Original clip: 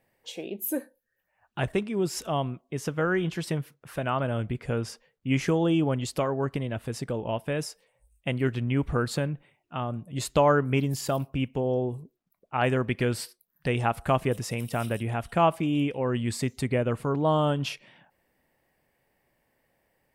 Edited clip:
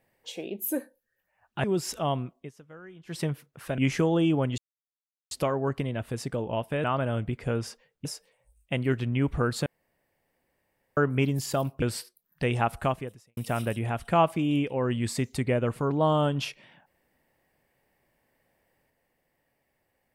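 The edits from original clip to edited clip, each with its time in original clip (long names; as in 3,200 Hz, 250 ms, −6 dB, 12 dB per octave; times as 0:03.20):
0:01.64–0:01.92: remove
0:02.65–0:03.47: duck −21 dB, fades 0.14 s
0:04.06–0:05.27: move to 0:07.60
0:06.07: splice in silence 0.73 s
0:09.21–0:10.52: fill with room tone
0:11.37–0:13.06: remove
0:14.03–0:14.61: fade out quadratic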